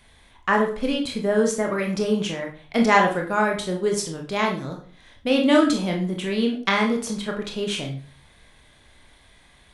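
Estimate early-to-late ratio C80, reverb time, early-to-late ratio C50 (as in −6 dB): 12.5 dB, 0.45 s, 7.5 dB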